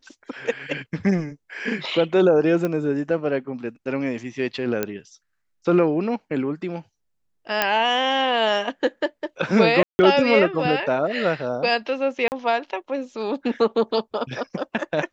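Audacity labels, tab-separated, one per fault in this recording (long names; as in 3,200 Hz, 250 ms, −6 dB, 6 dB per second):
2.650000	2.650000	click −13 dBFS
4.830000	4.830000	click −9 dBFS
7.620000	7.620000	click −4 dBFS
9.830000	9.990000	drop-out 160 ms
12.280000	12.320000	drop-out 39 ms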